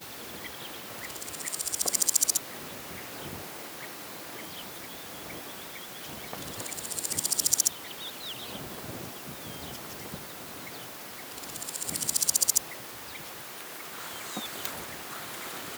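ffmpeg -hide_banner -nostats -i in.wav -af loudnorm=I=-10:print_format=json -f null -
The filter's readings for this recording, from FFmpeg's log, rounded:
"input_i" : "-32.1",
"input_tp" : "-4.6",
"input_lra" : "8.2",
"input_thresh" : "-42.1",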